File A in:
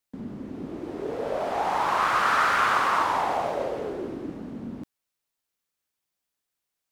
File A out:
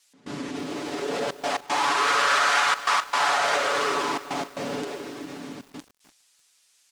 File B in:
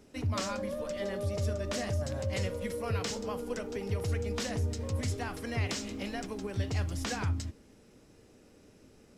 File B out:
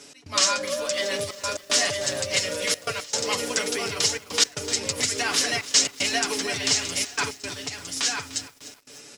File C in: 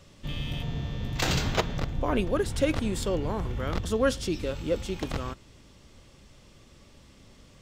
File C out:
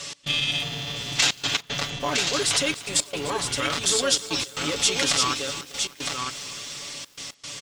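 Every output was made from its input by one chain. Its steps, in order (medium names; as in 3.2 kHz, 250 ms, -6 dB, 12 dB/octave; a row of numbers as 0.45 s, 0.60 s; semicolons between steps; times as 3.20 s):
compression 10:1, threshold -28 dBFS; saturation -20.5 dBFS; bass shelf 320 Hz +7 dB; peak limiter -26.5 dBFS; comb 7 ms, depth 67%; gain riding 0.5 s; on a send: delay 960 ms -5 dB; on the sum: trance gate "x.xxxxxxxx." 115 bpm -24 dB; frequency weighting ITU-R 468; bit-crushed delay 299 ms, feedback 55%, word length 8-bit, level -15 dB; normalise loudness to -24 LUFS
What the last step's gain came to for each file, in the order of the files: +9.5 dB, +10.0 dB, +12.0 dB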